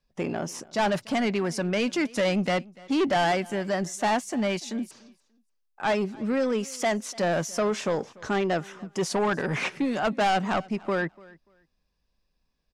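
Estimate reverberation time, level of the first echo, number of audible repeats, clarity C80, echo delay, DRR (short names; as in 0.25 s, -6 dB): none, -23.0 dB, 1, none, 0.292 s, none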